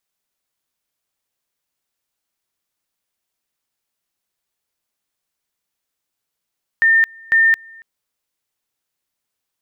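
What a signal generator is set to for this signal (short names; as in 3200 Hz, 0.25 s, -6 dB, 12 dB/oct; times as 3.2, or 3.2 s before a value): two-level tone 1810 Hz -9.5 dBFS, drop 28 dB, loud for 0.22 s, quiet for 0.28 s, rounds 2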